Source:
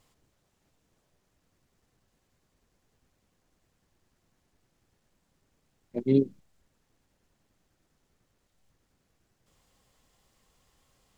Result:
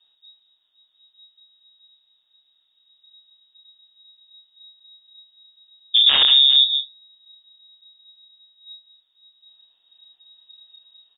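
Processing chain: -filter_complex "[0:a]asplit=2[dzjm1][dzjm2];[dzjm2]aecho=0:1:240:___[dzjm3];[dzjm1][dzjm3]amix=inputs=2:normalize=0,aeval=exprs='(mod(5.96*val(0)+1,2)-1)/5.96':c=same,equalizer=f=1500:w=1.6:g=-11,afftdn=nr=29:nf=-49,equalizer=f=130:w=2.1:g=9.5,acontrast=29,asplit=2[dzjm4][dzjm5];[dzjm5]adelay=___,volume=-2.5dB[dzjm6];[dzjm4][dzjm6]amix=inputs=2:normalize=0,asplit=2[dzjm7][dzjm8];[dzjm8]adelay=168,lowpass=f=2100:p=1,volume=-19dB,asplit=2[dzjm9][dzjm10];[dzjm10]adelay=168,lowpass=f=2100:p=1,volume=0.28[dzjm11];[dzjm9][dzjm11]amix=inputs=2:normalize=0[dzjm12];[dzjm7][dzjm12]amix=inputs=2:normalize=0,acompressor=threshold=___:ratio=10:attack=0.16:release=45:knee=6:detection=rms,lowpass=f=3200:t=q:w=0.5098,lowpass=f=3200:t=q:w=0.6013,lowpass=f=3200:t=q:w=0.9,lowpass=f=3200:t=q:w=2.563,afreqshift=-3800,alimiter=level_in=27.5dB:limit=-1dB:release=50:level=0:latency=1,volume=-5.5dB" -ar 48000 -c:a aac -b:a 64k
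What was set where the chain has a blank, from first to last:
0.562, 29, -23dB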